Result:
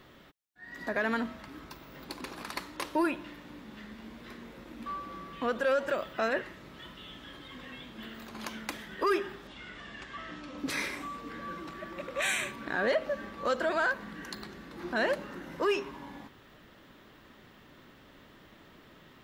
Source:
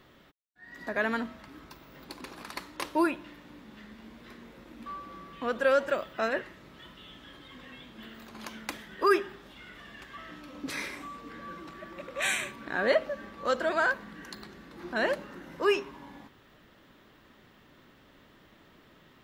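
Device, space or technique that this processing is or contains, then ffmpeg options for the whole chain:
soft clipper into limiter: -filter_complex "[0:a]asettb=1/sr,asplit=3[link_01][link_02][link_03];[link_01]atrim=end=9.474[link_04];[link_02]atrim=start=9.47:end=10.58,asetpts=PTS-STARTPTS,afade=type=in:duration=0.004:curve=qsin,afade=type=out:start_time=1.106:duration=0.004:curve=qsin,lowpass=frequency=8300:width=0.5412,lowpass=frequency=8300:width=1.3066[link_05];[link_03]atrim=start=10.576[link_06];[link_04][link_05]acrossfade=duration=0.004:curve1=hsin:curve2=qsin[link_07];[link_07][link_06]acrossfade=duration=0.004:curve1=qsin:curve2=hsin,asoftclip=type=tanh:threshold=-16.5dB,alimiter=limit=-23dB:level=0:latency=1:release=141,volume=2.5dB"

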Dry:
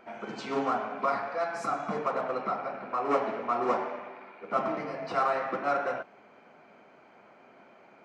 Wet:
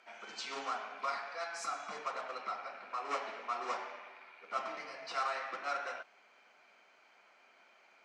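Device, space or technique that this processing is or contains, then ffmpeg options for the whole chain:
piezo pickup straight into a mixer: -af "lowpass=6400,aderivative,volume=8dB"

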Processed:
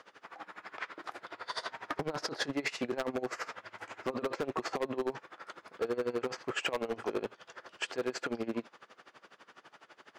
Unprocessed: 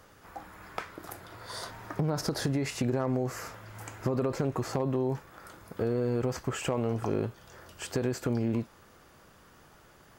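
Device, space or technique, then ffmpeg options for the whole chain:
helicopter radio: -af "highpass=340,lowpass=3000,aeval=exprs='val(0)*pow(10,-21*(0.5-0.5*cos(2*PI*12*n/s))/20)':channel_layout=same,asoftclip=type=hard:threshold=-32.5dB,highshelf=frequency=2300:gain=10,volume=5.5dB"

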